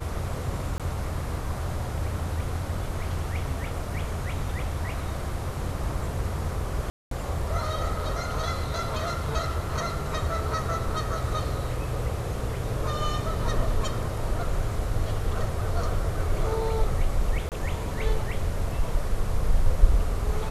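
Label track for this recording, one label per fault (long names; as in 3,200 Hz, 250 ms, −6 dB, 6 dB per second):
0.780000	0.800000	drop-out 17 ms
6.900000	7.110000	drop-out 213 ms
17.490000	17.520000	drop-out 28 ms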